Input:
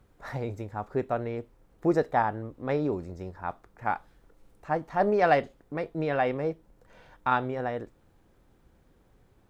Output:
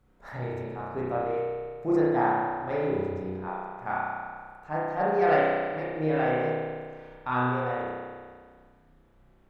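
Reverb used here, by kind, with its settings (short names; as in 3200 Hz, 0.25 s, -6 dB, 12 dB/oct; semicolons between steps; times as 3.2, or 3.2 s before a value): spring tank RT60 1.8 s, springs 32 ms, chirp 50 ms, DRR -7.5 dB; gain -7 dB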